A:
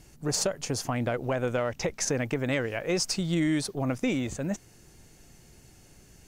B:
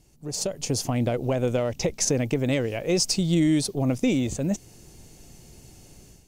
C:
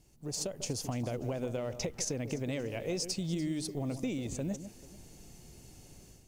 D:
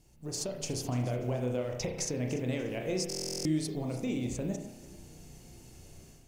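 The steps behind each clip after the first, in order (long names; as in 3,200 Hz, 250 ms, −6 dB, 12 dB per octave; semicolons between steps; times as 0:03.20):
dynamic equaliser 1,100 Hz, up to −5 dB, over −44 dBFS, Q 0.88; automatic gain control gain up to 11.5 dB; parametric band 1,600 Hz −8.5 dB 0.95 octaves; level −5.5 dB
downward compressor 4 to 1, threshold −28 dBFS, peak gain reduction 9 dB; log-companded quantiser 8 bits; delay that swaps between a low-pass and a high-pass 146 ms, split 1,400 Hz, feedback 53%, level −10.5 dB; level −5 dB
convolution reverb RT60 0.65 s, pre-delay 32 ms, DRR 2.5 dB; buffer that repeats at 0:03.08, samples 1,024, times 15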